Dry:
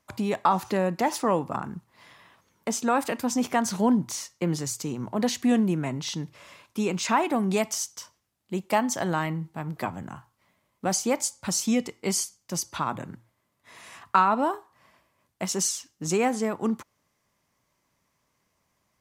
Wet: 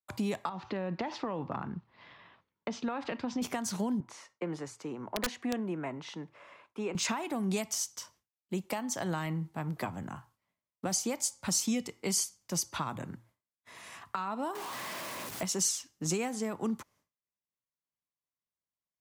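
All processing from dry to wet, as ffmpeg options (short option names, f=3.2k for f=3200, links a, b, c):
-filter_complex "[0:a]asettb=1/sr,asplit=3[a][b][c];[a]atrim=end=0.494[d];[b]atrim=start=0.49:end=3.42,asetpts=PTS-STARTPTS,afade=t=in:d=0.004:c=qsin,afade=t=out:st=2.926:d=0.004:c=qsin,lowpass=f=4.1k:w=0.5412,lowpass=f=4.1k:w=1.3066,acompressor=threshold=-24dB:ratio=4:attack=3.2:release=140:knee=1:detection=peak[e];[c]atrim=start=3.416[f];[d][e]acrossfade=d=0.004:c1=hsin:c2=qsin[g];[g][f]acrossfade=d=0.004:c1=qsin:c2=hsin,asettb=1/sr,asplit=3[h][i][j];[h]atrim=end=4.004[k];[i]atrim=start=4:end=6.95,asetpts=PTS-STARTPTS,afade=t=in:d=0.004:c=qsin,afade=t=out:st=2.946:d=0.004:c=qsin,lowpass=f=11k:w=0.5412,lowpass=f=11k:w=1.3066,acrossover=split=310 2500:gain=0.224 1 0.141[l][m][n];[l][m][n]amix=inputs=3:normalize=0,aeval=exprs='(mod(7.94*val(0)+1,2)-1)/7.94':c=same[o];[j]atrim=start=6.946[p];[k][o]acrossfade=d=0.004:c1=hsin:c2=qsin[q];[q][p]acrossfade=d=0.004:c1=qsin:c2=hsin,asettb=1/sr,asplit=3[r][s][t];[r]atrim=end=14.554[u];[s]atrim=start=14.55:end=15.43,asetpts=PTS-STARTPTS,afade=t=in:d=0.004:c=qsin,afade=t=out:st=0.876:d=0.004:c=qsin,aeval=exprs='val(0)+0.5*0.0251*sgn(val(0))':c=same,highpass=180[v];[t]atrim=start=15.426[w];[u][v]acrossfade=d=0.004:c1=hsin:c2=qsin[x];[x][w]acrossfade=d=0.004:c1=qsin:c2=hsin,agate=range=-33dB:threshold=-56dB:ratio=3:detection=peak,alimiter=limit=-14.5dB:level=0:latency=1:release=447,acrossover=split=170|3000[y][z][aa];[z]acompressor=threshold=-30dB:ratio=6[ab];[y][ab][aa]amix=inputs=3:normalize=0,volume=-2dB"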